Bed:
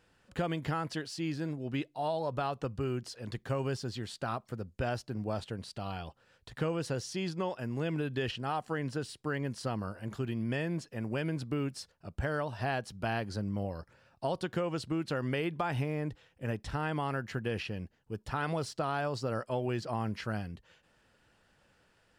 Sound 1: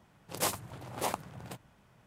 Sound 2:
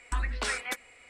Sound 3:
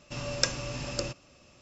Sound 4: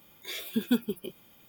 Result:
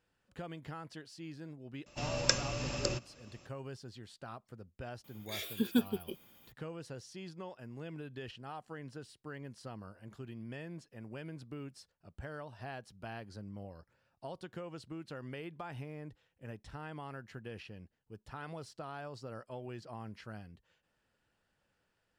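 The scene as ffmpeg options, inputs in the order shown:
ffmpeg -i bed.wav -i cue0.wav -i cue1.wav -i cue2.wav -i cue3.wav -filter_complex "[0:a]volume=-11.5dB[link_01];[3:a]atrim=end=1.61,asetpts=PTS-STARTPTS,volume=-1.5dB,afade=type=in:duration=0.004:curve=hsin,afade=type=out:start_time=1.606:duration=0.004:curve=hsin,adelay=1860[link_02];[4:a]atrim=end=1.48,asetpts=PTS-STARTPTS,volume=-3.5dB,afade=type=in:duration=0.004:curve=hsin,afade=type=out:start_time=1.476:duration=0.004:curve=hsin,adelay=5040[link_03];[link_01][link_02][link_03]amix=inputs=3:normalize=0" out.wav

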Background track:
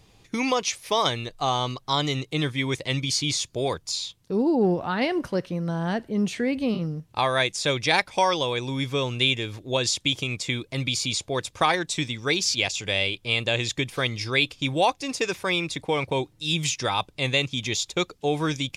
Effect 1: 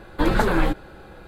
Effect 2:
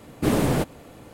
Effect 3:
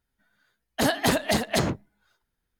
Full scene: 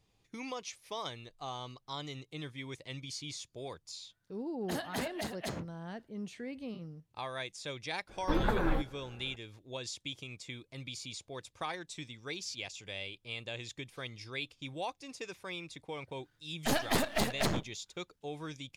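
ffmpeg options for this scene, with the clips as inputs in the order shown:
ffmpeg -i bed.wav -i cue0.wav -i cue1.wav -i cue2.wav -filter_complex "[3:a]asplit=2[link_01][link_02];[0:a]volume=-17dB[link_03];[1:a]equalizer=frequency=7400:width_type=o:width=2.3:gain=-9[link_04];[link_02]aeval=exprs='if(lt(val(0),0),0.251*val(0),val(0))':channel_layout=same[link_05];[link_01]atrim=end=2.59,asetpts=PTS-STARTPTS,volume=-15dB,afade=type=in:duration=0.004:curve=hsin,afade=type=out:start_time=2.586:duration=0.004:curve=hsin,adelay=3900[link_06];[link_04]atrim=end=1.27,asetpts=PTS-STARTPTS,volume=-10dB,afade=type=in:duration=0.004:curve=hsin,afade=type=out:start_time=1.266:duration=0.004:curve=hsin,adelay=8090[link_07];[link_05]atrim=end=2.59,asetpts=PTS-STARTPTS,volume=-4dB,afade=type=in:duration=0.004:curve=hsin,afade=type=out:start_time=2.586:duration=0.004:curve=hsin,adelay=15870[link_08];[link_03][link_06][link_07][link_08]amix=inputs=4:normalize=0" out.wav

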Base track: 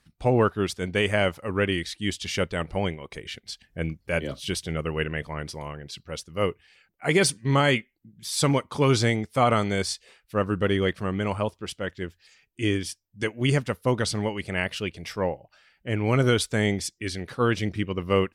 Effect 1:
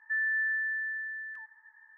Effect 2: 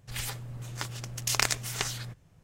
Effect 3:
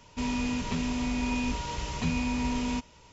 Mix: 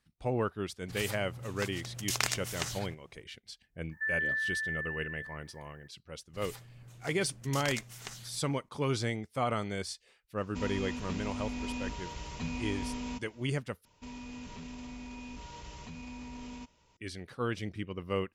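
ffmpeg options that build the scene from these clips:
ffmpeg -i bed.wav -i cue0.wav -i cue1.wav -i cue2.wav -filter_complex "[2:a]asplit=2[link_01][link_02];[3:a]asplit=2[link_03][link_04];[0:a]volume=-10.5dB[link_05];[link_01]highpass=54[link_06];[1:a]crystalizer=i=7:c=0[link_07];[link_04]alimiter=level_in=1dB:limit=-24dB:level=0:latency=1:release=16,volume=-1dB[link_08];[link_05]asplit=2[link_09][link_10];[link_09]atrim=end=13.854[link_11];[link_08]atrim=end=3.12,asetpts=PTS-STARTPTS,volume=-12dB[link_12];[link_10]atrim=start=16.966[link_13];[link_06]atrim=end=2.43,asetpts=PTS-STARTPTS,volume=-4.5dB,afade=type=in:duration=0.004:curve=hsin,afade=type=out:start_time=2.426:duration=0.004:curve=hsin,adelay=810[link_14];[link_07]atrim=end=1.97,asetpts=PTS-STARTPTS,volume=-9dB,afade=type=in:duration=0.004:curve=hsin,afade=type=out:start_time=1.966:duration=0.004:curve=hsin,adelay=3910[link_15];[link_02]atrim=end=2.43,asetpts=PTS-STARTPTS,volume=-12.5dB,afade=type=in:duration=0.004:curve=hsin,afade=type=out:start_time=2.426:duration=0.004:curve=hsin,adelay=276066S[link_16];[link_03]atrim=end=3.12,asetpts=PTS-STARTPTS,volume=-8dB,afade=type=in:duration=0.004:curve=hsin,afade=type=out:start_time=3.116:duration=0.004:curve=hsin,adelay=10380[link_17];[link_11][link_12]acrossfade=duration=0.004:curve1=hsin:curve2=hsin[link_18];[link_18][link_13]acrossfade=duration=0.004:curve1=hsin:curve2=hsin[link_19];[link_19][link_14][link_15][link_16][link_17]amix=inputs=5:normalize=0" out.wav

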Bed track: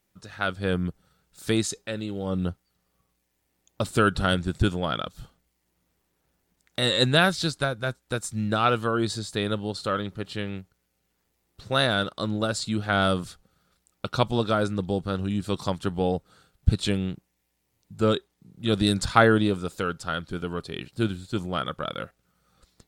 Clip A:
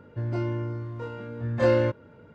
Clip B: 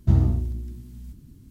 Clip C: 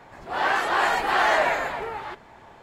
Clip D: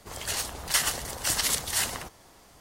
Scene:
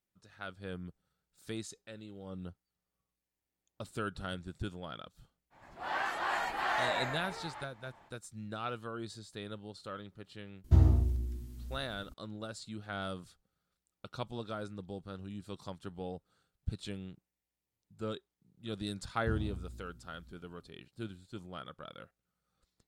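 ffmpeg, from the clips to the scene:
ffmpeg -i bed.wav -i cue0.wav -i cue1.wav -i cue2.wav -filter_complex "[2:a]asplit=2[link_01][link_02];[0:a]volume=-16.5dB[link_03];[3:a]equalizer=frequency=430:width_type=o:width=0.42:gain=-7[link_04];[link_01]equalizer=frequency=170:width_type=o:width=0.77:gain=-11.5[link_05];[link_04]atrim=end=2.62,asetpts=PTS-STARTPTS,volume=-11.5dB,afade=type=in:duration=0.05,afade=type=out:start_time=2.57:duration=0.05,adelay=5500[link_06];[link_05]atrim=end=1.5,asetpts=PTS-STARTPTS,volume=-2.5dB,afade=type=in:duration=0.004:curve=hsin,afade=type=out:start_time=1.496:duration=0.004:curve=hsin,adelay=10640[link_07];[link_02]atrim=end=1.5,asetpts=PTS-STARTPTS,volume=-18dB,afade=type=in:duration=0.004:curve=hsin,afade=type=out:start_time=1.496:duration=0.004:curve=hsin,adelay=19190[link_08];[link_03][link_06][link_07][link_08]amix=inputs=4:normalize=0" out.wav

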